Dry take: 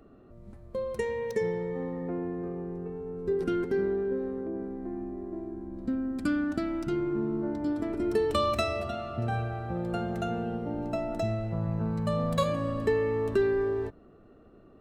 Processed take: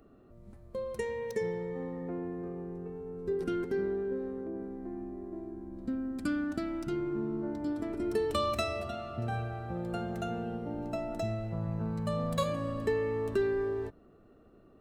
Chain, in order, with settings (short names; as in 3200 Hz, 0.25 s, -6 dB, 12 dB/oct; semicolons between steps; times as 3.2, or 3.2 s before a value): high shelf 5800 Hz +5 dB; gain -4 dB